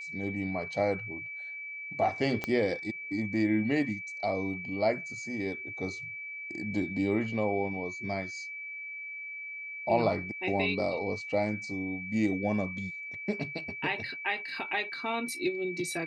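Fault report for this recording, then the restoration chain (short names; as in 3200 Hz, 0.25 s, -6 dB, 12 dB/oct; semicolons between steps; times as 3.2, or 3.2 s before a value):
tone 2300 Hz -38 dBFS
2.44 pop -17 dBFS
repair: de-click; notch 2300 Hz, Q 30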